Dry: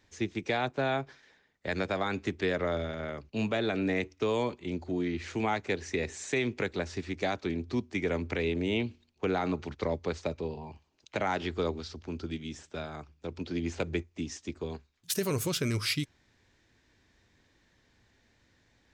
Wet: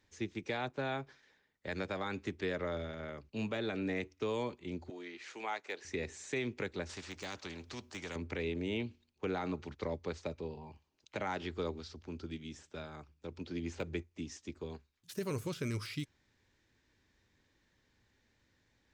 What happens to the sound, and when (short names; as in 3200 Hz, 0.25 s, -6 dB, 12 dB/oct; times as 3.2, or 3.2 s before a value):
4.9–5.85 HPF 560 Hz
6.89–8.16 spectral compressor 2:1
whole clip: de-esser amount 90%; notch 690 Hz, Q 12; gain -6.5 dB